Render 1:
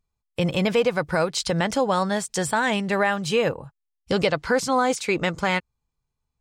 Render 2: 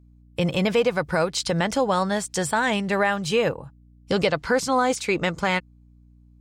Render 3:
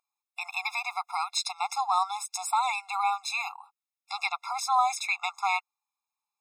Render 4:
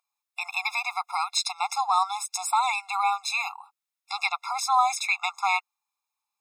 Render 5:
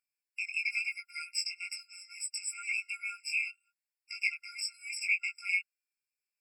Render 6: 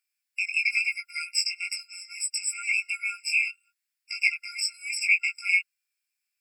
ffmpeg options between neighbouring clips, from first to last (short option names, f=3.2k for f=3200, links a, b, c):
-af "aeval=exprs='val(0)+0.00282*(sin(2*PI*60*n/s)+sin(2*PI*2*60*n/s)/2+sin(2*PI*3*60*n/s)/3+sin(2*PI*4*60*n/s)/4+sin(2*PI*5*60*n/s)/5)':c=same"
-af "afftfilt=real='re*eq(mod(floor(b*sr/1024/690),2),1)':imag='im*eq(mod(floor(b*sr/1024/690),2),1)':win_size=1024:overlap=0.75"
-af "highpass=630,volume=3.5dB"
-af "flanger=delay=18:depth=3.1:speed=1,afftfilt=real='re*eq(mod(floor(b*sr/1024/1400),2),1)':imag='im*eq(mod(floor(b*sr/1024/1400),2),1)':win_size=1024:overlap=0.75"
-af "highpass=f=1.4k:w=0.5412,highpass=f=1.4k:w=1.3066,volume=8dB"